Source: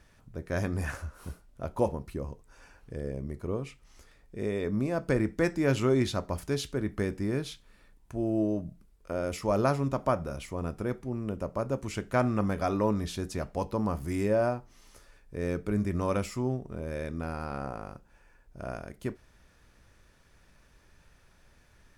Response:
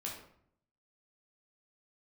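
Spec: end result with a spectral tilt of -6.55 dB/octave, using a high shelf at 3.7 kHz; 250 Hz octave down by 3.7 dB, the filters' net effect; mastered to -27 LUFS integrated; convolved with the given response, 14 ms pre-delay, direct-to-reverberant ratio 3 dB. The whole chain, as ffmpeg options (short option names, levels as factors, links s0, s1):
-filter_complex "[0:a]equalizer=f=250:t=o:g=-5,highshelf=f=3700:g=-3.5,asplit=2[s0][s1];[1:a]atrim=start_sample=2205,adelay=14[s2];[s1][s2]afir=irnorm=-1:irlink=0,volume=0.708[s3];[s0][s3]amix=inputs=2:normalize=0,volume=1.68"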